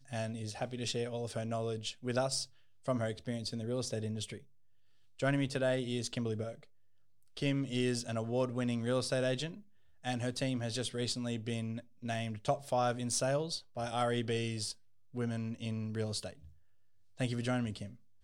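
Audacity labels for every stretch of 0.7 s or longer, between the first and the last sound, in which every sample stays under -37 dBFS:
4.360000	5.200000	silence
6.500000	7.370000	silence
16.300000	17.200000	silence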